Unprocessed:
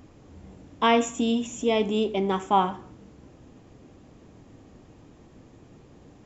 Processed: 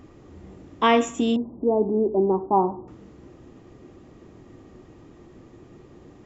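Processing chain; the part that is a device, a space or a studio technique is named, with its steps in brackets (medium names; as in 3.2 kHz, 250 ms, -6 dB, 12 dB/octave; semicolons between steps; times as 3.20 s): inside a helmet (treble shelf 5.1 kHz -4.5 dB; small resonant body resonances 360/1200/1900 Hz, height 8 dB); 1.36–2.88 s: elliptic low-pass 940 Hz, stop band 70 dB; trim +1.5 dB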